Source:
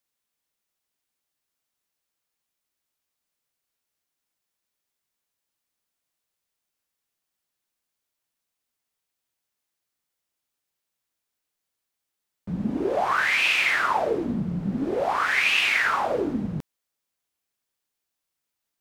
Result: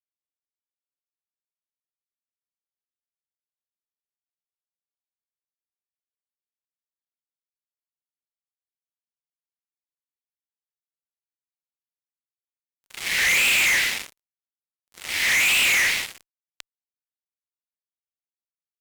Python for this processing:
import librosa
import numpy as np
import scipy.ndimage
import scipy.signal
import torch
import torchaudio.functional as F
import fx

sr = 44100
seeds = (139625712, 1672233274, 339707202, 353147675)

y = scipy.signal.sosfilt(scipy.signal.ellip(4, 1.0, 40, 2000.0, 'highpass', fs=sr, output='sos'), x)
y = fx.fuzz(y, sr, gain_db=41.0, gate_db=-44.0)
y = y * librosa.db_to_amplitude(-5.0)